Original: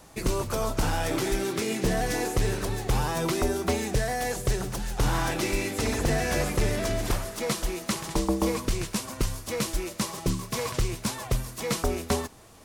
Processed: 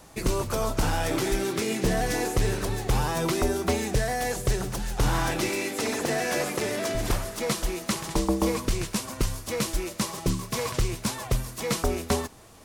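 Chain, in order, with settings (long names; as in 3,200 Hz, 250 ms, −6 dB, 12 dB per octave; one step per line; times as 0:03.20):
0:05.49–0:06.95: high-pass filter 230 Hz 12 dB per octave
level +1 dB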